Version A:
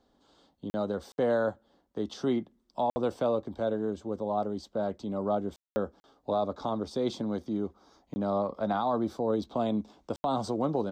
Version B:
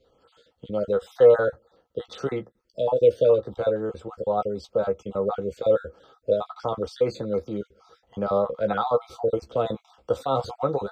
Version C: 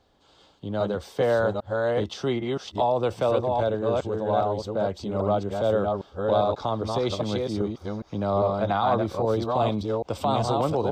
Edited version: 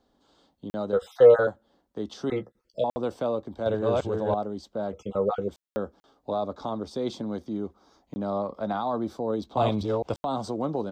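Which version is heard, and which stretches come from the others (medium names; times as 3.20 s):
A
0.93–1.47 s: from B
2.30–2.84 s: from B
3.66–4.34 s: from C
4.93–5.48 s: from B
9.57–10.14 s: from C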